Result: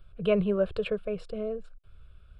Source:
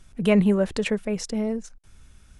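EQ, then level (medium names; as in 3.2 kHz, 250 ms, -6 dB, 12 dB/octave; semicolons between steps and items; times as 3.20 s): tape spacing loss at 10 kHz 21 dB; static phaser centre 1.3 kHz, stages 8; 0.0 dB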